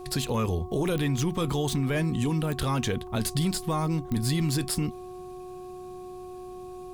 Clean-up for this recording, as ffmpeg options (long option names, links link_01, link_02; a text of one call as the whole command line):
ffmpeg -i in.wav -af "adeclick=threshold=4,bandreject=frequency=365.5:width_type=h:width=4,bandreject=frequency=731:width_type=h:width=4,bandreject=frequency=1096.5:width_type=h:width=4" out.wav